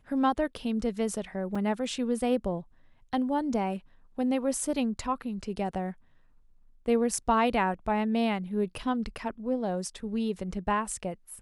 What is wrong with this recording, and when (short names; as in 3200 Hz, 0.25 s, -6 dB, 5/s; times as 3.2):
1.55 gap 4.3 ms